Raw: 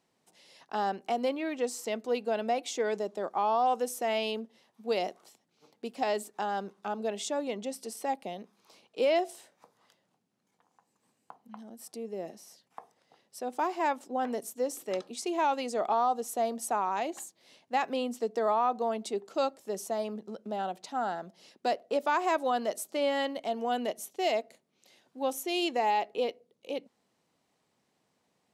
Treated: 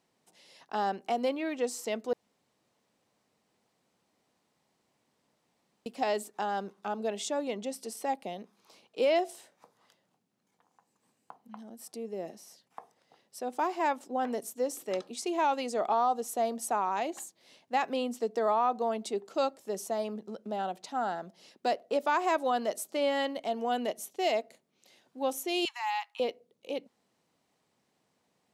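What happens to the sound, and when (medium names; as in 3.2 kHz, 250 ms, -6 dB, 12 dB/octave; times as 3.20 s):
2.13–5.86 s: room tone
25.65–26.20 s: steep high-pass 870 Hz 72 dB/octave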